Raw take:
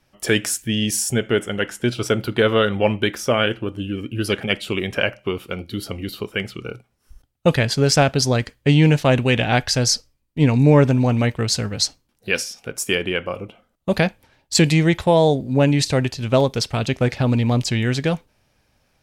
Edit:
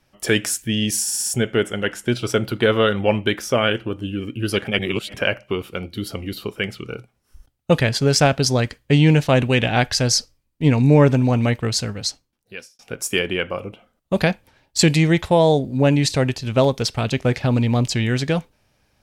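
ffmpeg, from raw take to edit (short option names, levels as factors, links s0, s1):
-filter_complex "[0:a]asplit=8[s0][s1][s2][s3][s4][s5][s6][s7];[s0]atrim=end=1.082[s8];[s1]atrim=start=1.018:end=1.082[s9];[s2]atrim=start=1.018:end=1.082[s10];[s3]atrim=start=1.018:end=1.082[s11];[s4]atrim=start=1.018:end=4.552[s12];[s5]atrim=start=4.548:end=4.902,asetpts=PTS-STARTPTS,areverse[s13];[s6]atrim=start=4.898:end=12.55,asetpts=PTS-STARTPTS,afade=t=out:st=6.482:d=1.17[s14];[s7]atrim=start=12.55,asetpts=PTS-STARTPTS,afade=t=in:d=0.004:c=hsin[s15];[s8][s9]acrossfade=d=0.004:c1=hsin:c2=hsin[s16];[s16][s10]acrossfade=d=0.004:c1=hsin:c2=hsin[s17];[s17][s11]acrossfade=d=0.004:c1=hsin:c2=hsin[s18];[s18][s12]acrossfade=d=0.004:c1=hsin:c2=hsin[s19];[s19][s13]acrossfade=d=0.004:c1=hsin:c2=hsin[s20];[s14][s15]concat=n=2:v=0:a=1[s21];[s20][s21]acrossfade=d=0.004:c1=hsin:c2=hsin"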